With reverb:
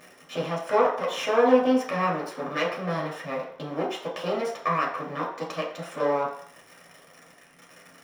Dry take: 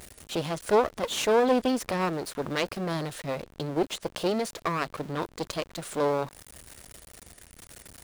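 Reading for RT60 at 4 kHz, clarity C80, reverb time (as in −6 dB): 0.60 s, 9.5 dB, 0.60 s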